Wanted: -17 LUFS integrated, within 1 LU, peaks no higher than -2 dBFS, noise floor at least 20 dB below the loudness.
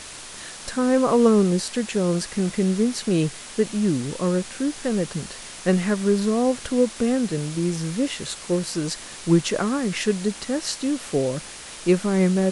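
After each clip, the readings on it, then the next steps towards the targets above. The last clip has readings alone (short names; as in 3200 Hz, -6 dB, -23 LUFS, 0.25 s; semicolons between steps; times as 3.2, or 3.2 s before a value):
noise floor -39 dBFS; noise floor target -43 dBFS; loudness -23.0 LUFS; peak -6.5 dBFS; loudness target -17.0 LUFS
-> denoiser 6 dB, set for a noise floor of -39 dBFS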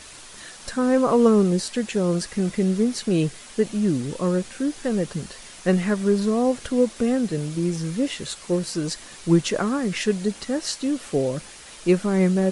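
noise floor -43 dBFS; loudness -23.0 LUFS; peak -6.5 dBFS; loudness target -17.0 LUFS
-> gain +6 dB; limiter -2 dBFS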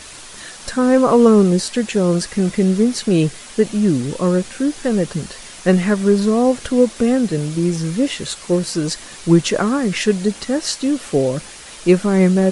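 loudness -17.0 LUFS; peak -2.0 dBFS; noise floor -37 dBFS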